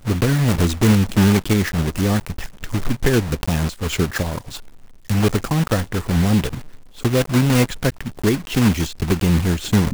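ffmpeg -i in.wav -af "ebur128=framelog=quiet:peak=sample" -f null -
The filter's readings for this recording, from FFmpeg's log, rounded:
Integrated loudness:
  I:         -19.3 LUFS
  Threshold: -29.7 LUFS
Loudness range:
  LRA:         3.7 LU
  Threshold: -40.4 LUFS
  LRA low:   -22.4 LUFS
  LRA high:  -18.8 LUFS
Sample peak:
  Peak:       -4.2 dBFS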